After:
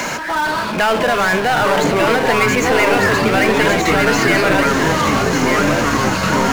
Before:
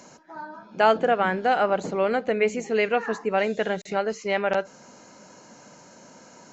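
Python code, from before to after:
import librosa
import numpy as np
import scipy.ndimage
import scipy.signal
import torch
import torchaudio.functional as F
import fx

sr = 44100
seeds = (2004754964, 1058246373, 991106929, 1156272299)

p1 = fx.peak_eq(x, sr, hz=2200.0, db=14.0, octaves=2.0)
p2 = fx.over_compress(p1, sr, threshold_db=-23.0, ratio=-1.0)
p3 = p1 + (p2 * 10.0 ** (2.0 / 20.0))
p4 = fx.power_curve(p3, sr, exponent=0.5)
p5 = p4 + fx.echo_single(p4, sr, ms=1198, db=-5.5, dry=0)
p6 = fx.echo_pitch(p5, sr, ms=455, semitones=-7, count=3, db_per_echo=-3.0)
p7 = fx.band_squash(p6, sr, depth_pct=40)
y = p7 * 10.0 ** (-10.0 / 20.0)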